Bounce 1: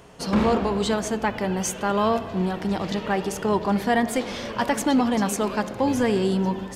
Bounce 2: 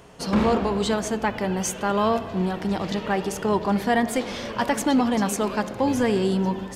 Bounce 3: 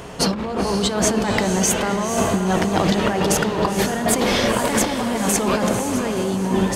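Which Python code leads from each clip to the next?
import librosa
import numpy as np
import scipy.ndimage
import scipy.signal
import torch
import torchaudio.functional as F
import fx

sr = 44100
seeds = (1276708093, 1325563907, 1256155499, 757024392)

y1 = x
y2 = fx.over_compress(y1, sr, threshold_db=-29.0, ratio=-1.0)
y2 = fx.echo_diffused(y2, sr, ms=503, feedback_pct=44, wet_db=-7.0)
y2 = y2 * librosa.db_to_amplitude(8.0)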